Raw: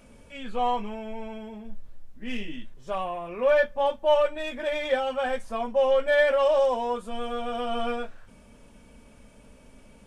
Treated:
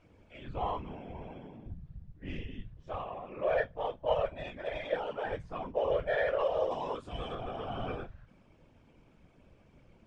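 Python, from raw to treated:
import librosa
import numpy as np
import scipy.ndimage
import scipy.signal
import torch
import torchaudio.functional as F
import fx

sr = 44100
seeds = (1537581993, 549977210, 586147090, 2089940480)

y = fx.high_shelf(x, sr, hz=2400.0, db=10.5, at=(6.71, 7.35))
y = fx.whisperise(y, sr, seeds[0])
y = fx.air_absorb(y, sr, metres=140.0)
y = y * 10.0 ** (-8.5 / 20.0)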